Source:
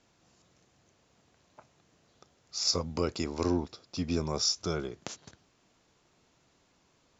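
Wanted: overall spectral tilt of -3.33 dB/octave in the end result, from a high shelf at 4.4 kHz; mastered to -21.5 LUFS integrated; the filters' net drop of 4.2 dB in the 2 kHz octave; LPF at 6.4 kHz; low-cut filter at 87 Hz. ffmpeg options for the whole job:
-af "highpass=87,lowpass=6400,equalizer=f=2000:t=o:g=-8,highshelf=f=4400:g=8.5,volume=2.82"

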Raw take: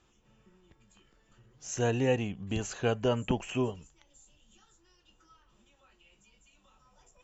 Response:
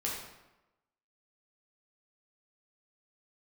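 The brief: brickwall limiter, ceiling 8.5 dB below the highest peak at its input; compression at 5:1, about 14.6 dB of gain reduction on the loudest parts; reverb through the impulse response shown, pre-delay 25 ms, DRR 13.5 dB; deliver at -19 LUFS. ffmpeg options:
-filter_complex "[0:a]acompressor=threshold=0.0112:ratio=5,alimiter=level_in=4.47:limit=0.0631:level=0:latency=1,volume=0.224,asplit=2[s0][s1];[1:a]atrim=start_sample=2205,adelay=25[s2];[s1][s2]afir=irnorm=-1:irlink=0,volume=0.133[s3];[s0][s3]amix=inputs=2:normalize=0,volume=23.7"

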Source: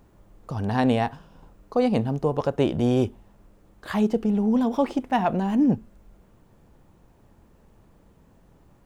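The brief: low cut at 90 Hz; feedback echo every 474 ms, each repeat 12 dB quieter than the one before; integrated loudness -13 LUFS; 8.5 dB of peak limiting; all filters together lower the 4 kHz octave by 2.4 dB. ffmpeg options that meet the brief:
-af "highpass=90,equalizer=f=4000:t=o:g=-3.5,alimiter=limit=0.119:level=0:latency=1,aecho=1:1:474|948|1422:0.251|0.0628|0.0157,volume=5.96"

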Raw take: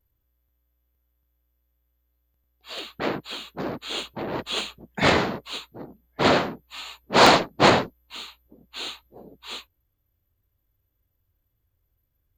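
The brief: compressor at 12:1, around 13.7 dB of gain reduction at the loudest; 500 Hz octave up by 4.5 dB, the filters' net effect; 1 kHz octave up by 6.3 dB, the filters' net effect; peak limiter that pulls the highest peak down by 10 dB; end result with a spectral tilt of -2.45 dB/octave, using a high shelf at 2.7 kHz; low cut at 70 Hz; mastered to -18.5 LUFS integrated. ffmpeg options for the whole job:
-af "highpass=70,equalizer=f=500:t=o:g=3.5,equalizer=f=1000:t=o:g=7.5,highshelf=f=2700:g=-5.5,acompressor=threshold=0.112:ratio=12,volume=5.01,alimiter=limit=0.562:level=0:latency=1"

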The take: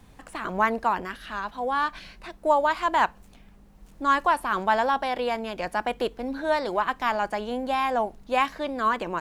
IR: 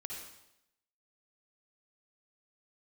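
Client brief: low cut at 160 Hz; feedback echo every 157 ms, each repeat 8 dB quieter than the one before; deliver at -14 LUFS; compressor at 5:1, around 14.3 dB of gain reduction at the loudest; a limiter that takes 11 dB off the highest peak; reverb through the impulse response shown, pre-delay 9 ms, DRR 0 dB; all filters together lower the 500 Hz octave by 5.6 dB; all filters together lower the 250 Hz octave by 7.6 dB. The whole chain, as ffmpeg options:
-filter_complex "[0:a]highpass=160,equalizer=f=250:t=o:g=-6.5,equalizer=f=500:t=o:g=-6,acompressor=threshold=0.0178:ratio=5,alimiter=level_in=3.55:limit=0.0631:level=0:latency=1,volume=0.282,aecho=1:1:157|314|471|628|785:0.398|0.159|0.0637|0.0255|0.0102,asplit=2[s0][s1];[1:a]atrim=start_sample=2205,adelay=9[s2];[s1][s2]afir=irnorm=-1:irlink=0,volume=1.19[s3];[s0][s3]amix=inputs=2:normalize=0,volume=23.7"

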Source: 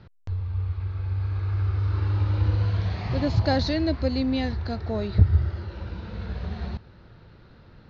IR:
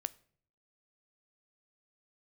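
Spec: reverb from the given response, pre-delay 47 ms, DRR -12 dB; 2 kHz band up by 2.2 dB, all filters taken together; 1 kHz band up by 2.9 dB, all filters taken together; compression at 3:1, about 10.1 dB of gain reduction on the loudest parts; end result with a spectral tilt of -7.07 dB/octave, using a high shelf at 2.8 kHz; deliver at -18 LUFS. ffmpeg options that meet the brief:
-filter_complex "[0:a]equalizer=f=1000:t=o:g=4,equalizer=f=2000:t=o:g=3,highshelf=f=2800:g=-4.5,acompressor=threshold=0.0562:ratio=3,asplit=2[s0][s1];[1:a]atrim=start_sample=2205,adelay=47[s2];[s1][s2]afir=irnorm=-1:irlink=0,volume=4.47[s3];[s0][s3]amix=inputs=2:normalize=0,volume=0.944"

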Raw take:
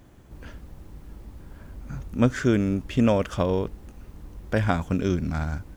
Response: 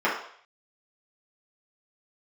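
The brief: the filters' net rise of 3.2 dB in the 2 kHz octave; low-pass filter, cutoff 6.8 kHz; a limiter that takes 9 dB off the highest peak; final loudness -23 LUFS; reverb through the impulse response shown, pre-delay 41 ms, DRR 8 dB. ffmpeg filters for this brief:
-filter_complex "[0:a]lowpass=6800,equalizer=f=2000:t=o:g=4.5,alimiter=limit=0.168:level=0:latency=1,asplit=2[s0][s1];[1:a]atrim=start_sample=2205,adelay=41[s2];[s1][s2]afir=irnorm=-1:irlink=0,volume=0.0596[s3];[s0][s3]amix=inputs=2:normalize=0,volume=1.58"

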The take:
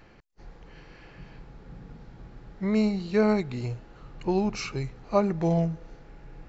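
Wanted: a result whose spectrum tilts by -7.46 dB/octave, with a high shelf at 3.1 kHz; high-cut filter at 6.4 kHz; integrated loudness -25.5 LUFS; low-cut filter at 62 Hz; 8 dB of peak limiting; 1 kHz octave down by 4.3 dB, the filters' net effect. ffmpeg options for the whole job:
-af "highpass=62,lowpass=6400,equalizer=f=1000:t=o:g=-5,highshelf=f=3100:g=-6.5,volume=1.88,alimiter=limit=0.168:level=0:latency=1"

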